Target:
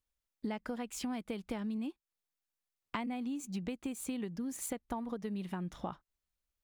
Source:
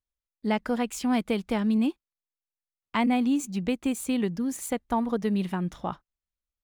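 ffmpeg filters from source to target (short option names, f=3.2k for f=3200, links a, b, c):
-af "acompressor=threshold=-38dB:ratio=10,volume=2.5dB"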